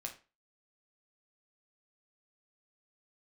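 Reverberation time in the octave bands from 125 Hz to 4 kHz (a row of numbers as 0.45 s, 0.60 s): 0.30 s, 0.35 s, 0.30 s, 0.30 s, 0.30 s, 0.25 s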